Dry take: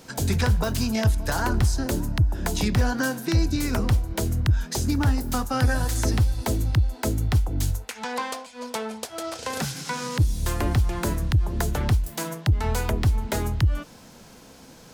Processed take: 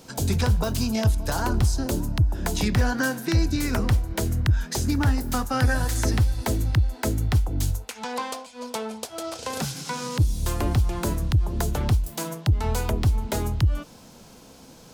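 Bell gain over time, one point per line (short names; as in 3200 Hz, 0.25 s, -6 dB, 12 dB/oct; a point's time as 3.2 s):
bell 1800 Hz 0.7 oct
2.1 s -5.5 dB
2.72 s +2.5 dB
7.11 s +2.5 dB
7.87 s -5 dB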